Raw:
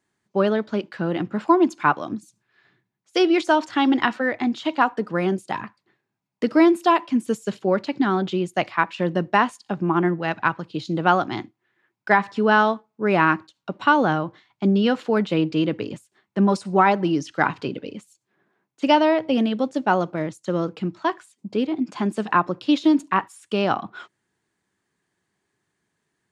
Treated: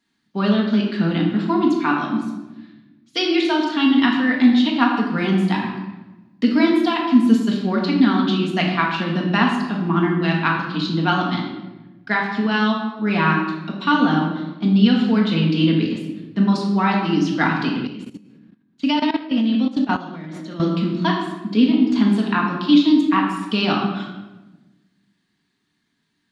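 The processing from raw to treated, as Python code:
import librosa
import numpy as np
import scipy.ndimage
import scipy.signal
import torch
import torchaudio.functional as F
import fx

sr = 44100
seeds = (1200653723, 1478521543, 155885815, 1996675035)

y = fx.rider(x, sr, range_db=3, speed_s=0.5)
y = fx.graphic_eq(y, sr, hz=(125, 250, 500, 4000, 8000), db=(-5, 9, -11, 11, -6))
y = fx.room_shoebox(y, sr, seeds[0], volume_m3=620.0, walls='mixed', distance_m=1.7)
y = fx.level_steps(y, sr, step_db=15, at=(17.87, 20.6))
y = y * librosa.db_to_amplitude(-2.5)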